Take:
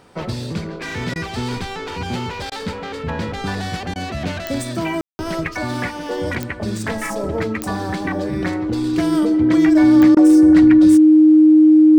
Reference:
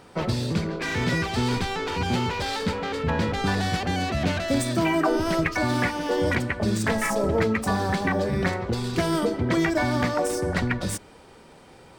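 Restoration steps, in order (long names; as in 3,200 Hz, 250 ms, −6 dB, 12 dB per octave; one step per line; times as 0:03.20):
click removal
notch filter 310 Hz, Q 30
ambience match 0:05.01–0:05.19
repair the gap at 0:01.14/0:02.50/0:03.94/0:10.15, 16 ms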